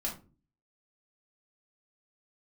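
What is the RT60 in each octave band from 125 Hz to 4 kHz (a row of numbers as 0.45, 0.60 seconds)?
0.60, 0.55, 0.40, 0.30, 0.25, 0.20 seconds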